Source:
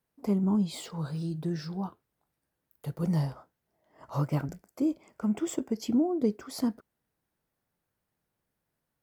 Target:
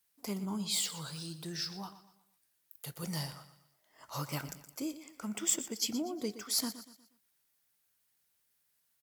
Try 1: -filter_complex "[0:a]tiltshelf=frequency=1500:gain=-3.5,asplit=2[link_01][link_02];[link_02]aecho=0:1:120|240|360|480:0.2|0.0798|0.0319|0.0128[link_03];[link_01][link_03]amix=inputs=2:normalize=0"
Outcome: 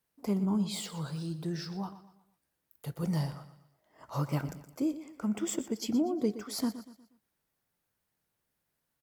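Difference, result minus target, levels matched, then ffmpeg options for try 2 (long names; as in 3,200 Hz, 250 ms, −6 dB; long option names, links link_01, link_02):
2,000 Hz band −4.0 dB
-filter_complex "[0:a]tiltshelf=frequency=1500:gain=-12,asplit=2[link_01][link_02];[link_02]aecho=0:1:120|240|360|480:0.2|0.0798|0.0319|0.0128[link_03];[link_01][link_03]amix=inputs=2:normalize=0"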